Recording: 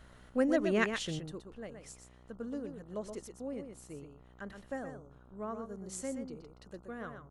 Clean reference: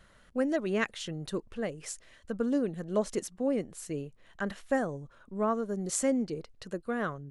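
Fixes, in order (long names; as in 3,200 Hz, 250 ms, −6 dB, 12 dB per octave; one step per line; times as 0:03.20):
hum removal 62 Hz, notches 23
echo removal 123 ms −7.5 dB
level 0 dB, from 0:01.19 +11.5 dB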